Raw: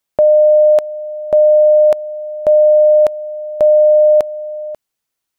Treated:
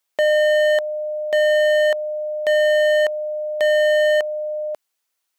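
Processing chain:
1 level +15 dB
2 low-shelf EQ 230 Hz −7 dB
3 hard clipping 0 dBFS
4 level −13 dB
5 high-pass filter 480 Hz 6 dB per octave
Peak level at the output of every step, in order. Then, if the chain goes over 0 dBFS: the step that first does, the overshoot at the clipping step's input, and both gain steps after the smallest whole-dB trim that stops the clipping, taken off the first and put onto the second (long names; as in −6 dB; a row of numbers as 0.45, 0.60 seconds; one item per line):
+9.5, +9.0, 0.0, −13.0, −10.0 dBFS
step 1, 9.0 dB
step 1 +6 dB, step 4 −4 dB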